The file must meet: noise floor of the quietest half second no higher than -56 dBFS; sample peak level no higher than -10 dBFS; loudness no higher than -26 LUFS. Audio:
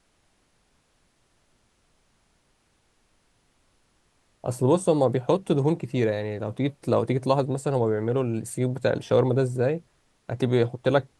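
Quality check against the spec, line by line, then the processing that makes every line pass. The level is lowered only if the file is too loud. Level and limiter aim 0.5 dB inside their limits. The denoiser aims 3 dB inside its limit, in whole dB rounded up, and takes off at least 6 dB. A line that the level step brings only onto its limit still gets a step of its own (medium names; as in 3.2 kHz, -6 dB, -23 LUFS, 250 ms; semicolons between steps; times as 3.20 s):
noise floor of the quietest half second -67 dBFS: pass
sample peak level -7.5 dBFS: fail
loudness -25.0 LUFS: fail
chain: trim -1.5 dB; peak limiter -10.5 dBFS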